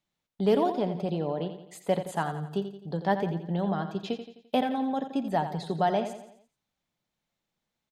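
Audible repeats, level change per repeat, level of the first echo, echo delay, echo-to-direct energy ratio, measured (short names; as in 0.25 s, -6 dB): 4, -6.5 dB, -10.0 dB, 86 ms, -9.0 dB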